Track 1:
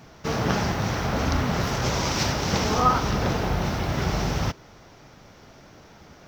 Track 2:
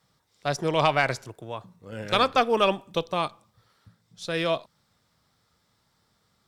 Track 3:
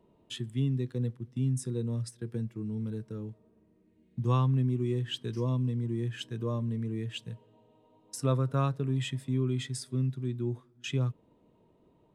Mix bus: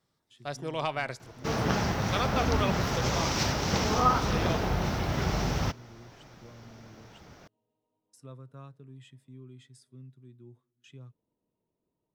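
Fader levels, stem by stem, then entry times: -3.5 dB, -9.5 dB, -19.0 dB; 1.20 s, 0.00 s, 0.00 s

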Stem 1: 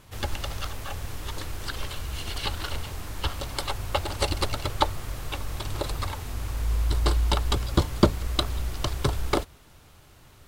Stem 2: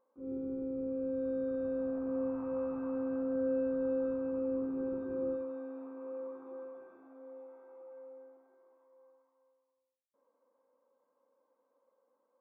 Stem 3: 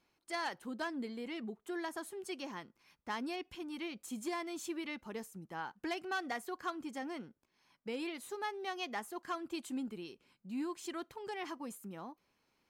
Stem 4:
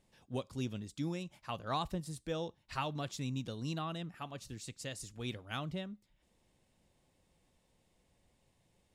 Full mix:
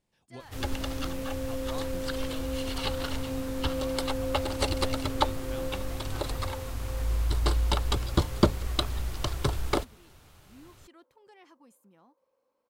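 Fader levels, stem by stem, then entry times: -2.5 dB, -0.5 dB, -14.0 dB, -7.5 dB; 0.40 s, 0.35 s, 0.00 s, 0.00 s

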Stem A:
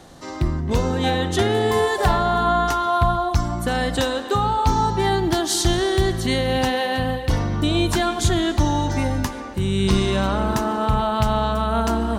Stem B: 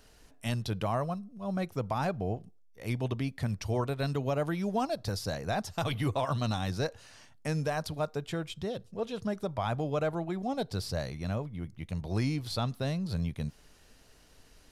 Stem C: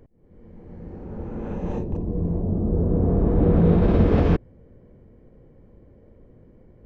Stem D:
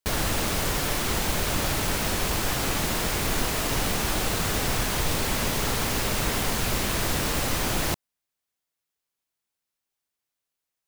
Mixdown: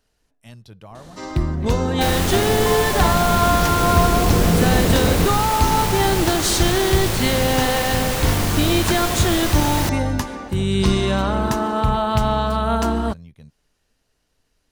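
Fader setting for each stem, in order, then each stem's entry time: +1.0 dB, -10.0 dB, -0.5 dB, +2.5 dB; 0.95 s, 0.00 s, 0.90 s, 1.95 s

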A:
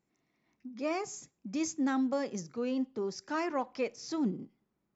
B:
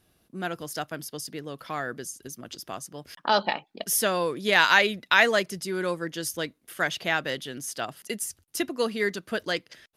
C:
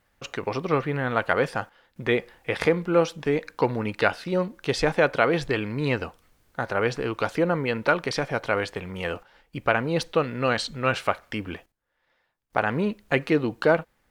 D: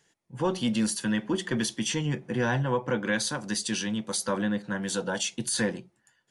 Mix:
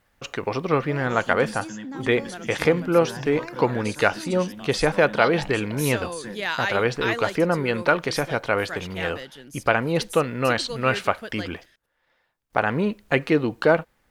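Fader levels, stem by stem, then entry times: -6.0 dB, -7.5 dB, +2.0 dB, -10.0 dB; 0.05 s, 1.90 s, 0.00 s, 0.65 s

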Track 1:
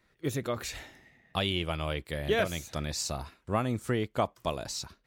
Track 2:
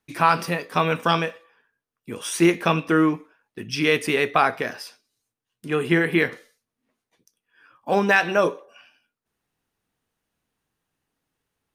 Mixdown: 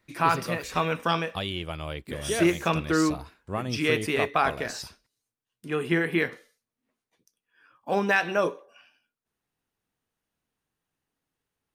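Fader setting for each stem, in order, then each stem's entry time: -2.0 dB, -5.0 dB; 0.00 s, 0.00 s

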